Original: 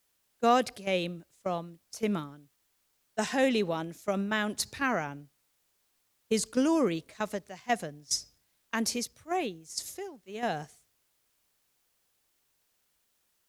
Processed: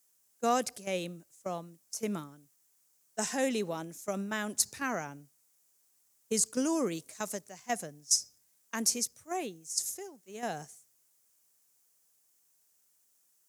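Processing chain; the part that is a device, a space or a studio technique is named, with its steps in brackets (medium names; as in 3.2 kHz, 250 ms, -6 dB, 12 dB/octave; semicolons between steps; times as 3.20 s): 6.92–7.41 s: peaking EQ 10 kHz +5 dB 2.6 oct; budget condenser microphone (high-pass 99 Hz 12 dB/octave; resonant high shelf 5 kHz +9 dB, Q 1.5); trim -4.5 dB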